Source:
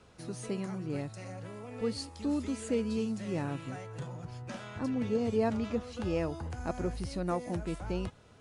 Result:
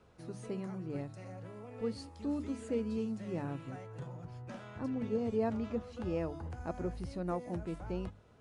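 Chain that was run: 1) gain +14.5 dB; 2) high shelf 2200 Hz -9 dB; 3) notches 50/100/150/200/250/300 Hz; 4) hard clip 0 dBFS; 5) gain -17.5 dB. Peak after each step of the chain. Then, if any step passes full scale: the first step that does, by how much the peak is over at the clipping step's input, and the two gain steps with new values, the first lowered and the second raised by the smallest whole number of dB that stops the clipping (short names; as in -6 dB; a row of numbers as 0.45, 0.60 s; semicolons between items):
-4.0, -4.0, -4.5, -4.5, -22.0 dBFS; no overload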